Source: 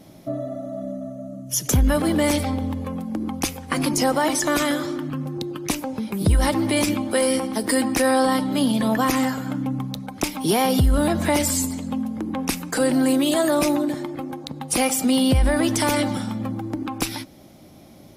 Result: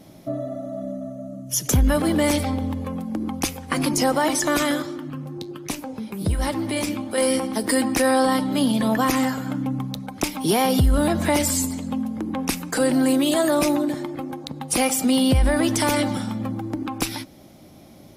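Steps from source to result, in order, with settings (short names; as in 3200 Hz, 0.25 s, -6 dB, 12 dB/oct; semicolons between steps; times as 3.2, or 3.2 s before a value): 4.82–7.18 flange 1.2 Hz, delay 6.8 ms, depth 7 ms, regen -76%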